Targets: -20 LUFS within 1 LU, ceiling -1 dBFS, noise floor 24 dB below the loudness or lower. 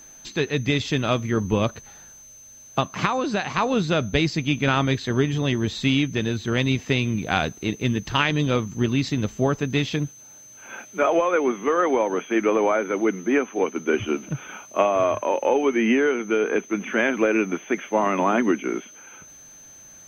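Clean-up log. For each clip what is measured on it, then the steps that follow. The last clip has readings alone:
steady tone 6.2 kHz; tone level -44 dBFS; loudness -23.0 LUFS; peak level -6.5 dBFS; loudness target -20.0 LUFS
-> band-stop 6.2 kHz, Q 30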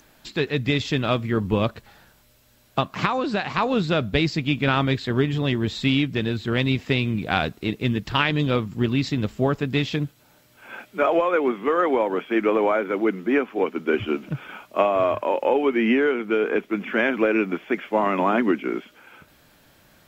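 steady tone not found; loudness -23.0 LUFS; peak level -6.5 dBFS; loudness target -20.0 LUFS
-> trim +3 dB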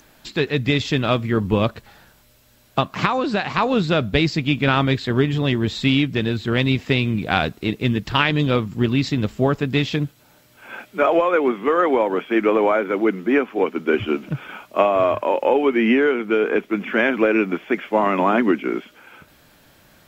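loudness -20.0 LUFS; peak level -3.5 dBFS; noise floor -54 dBFS

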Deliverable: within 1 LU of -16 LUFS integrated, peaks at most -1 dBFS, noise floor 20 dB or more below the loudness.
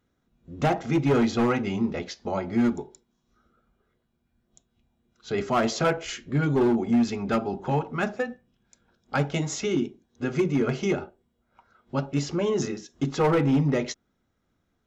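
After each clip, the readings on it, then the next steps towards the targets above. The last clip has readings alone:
clipped samples 1.5%; clipping level -16.5 dBFS; loudness -26.0 LUFS; peak level -16.5 dBFS; loudness target -16.0 LUFS
-> clip repair -16.5 dBFS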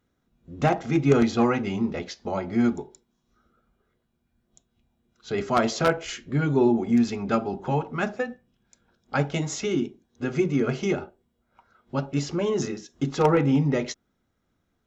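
clipped samples 0.0%; loudness -25.5 LUFS; peak level -7.5 dBFS; loudness target -16.0 LUFS
-> trim +9.5 dB; peak limiter -1 dBFS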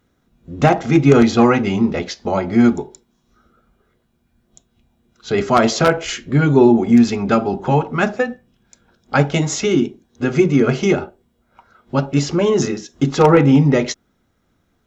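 loudness -16.0 LUFS; peak level -1.0 dBFS; noise floor -65 dBFS

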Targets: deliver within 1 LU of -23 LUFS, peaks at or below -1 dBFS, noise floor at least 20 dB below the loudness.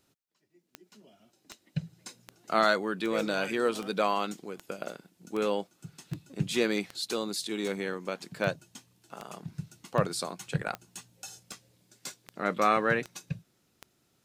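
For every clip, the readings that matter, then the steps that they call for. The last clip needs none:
clicks found 18; loudness -31.0 LUFS; peak level -9.5 dBFS; loudness target -23.0 LUFS
-> de-click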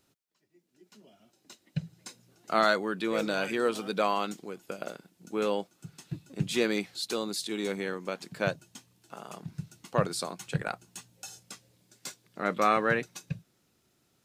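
clicks found 0; loudness -31.0 LUFS; peak level -9.5 dBFS; loudness target -23.0 LUFS
-> trim +8 dB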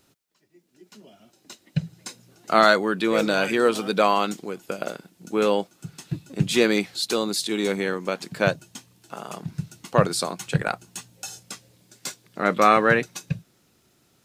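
loudness -23.0 LUFS; peak level -1.5 dBFS; noise floor -64 dBFS

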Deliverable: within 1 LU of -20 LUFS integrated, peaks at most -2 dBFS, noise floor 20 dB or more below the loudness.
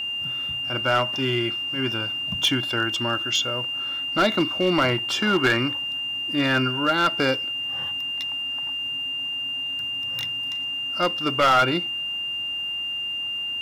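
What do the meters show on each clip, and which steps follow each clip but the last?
clipped samples 0.5%; clipping level -13.5 dBFS; steady tone 2.8 kHz; tone level -26 dBFS; loudness -23.0 LUFS; peak level -13.5 dBFS; loudness target -20.0 LUFS
-> clip repair -13.5 dBFS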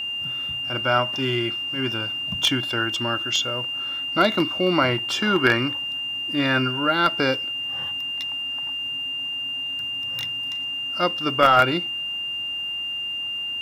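clipped samples 0.0%; steady tone 2.8 kHz; tone level -26 dBFS
-> band-stop 2.8 kHz, Q 30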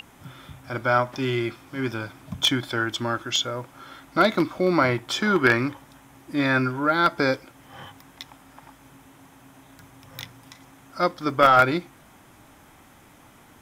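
steady tone not found; loudness -23.0 LUFS; peak level -4.0 dBFS; loudness target -20.0 LUFS
-> trim +3 dB; peak limiter -2 dBFS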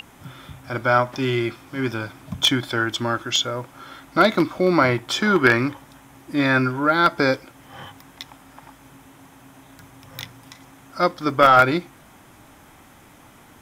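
loudness -20.0 LUFS; peak level -2.0 dBFS; noise floor -49 dBFS

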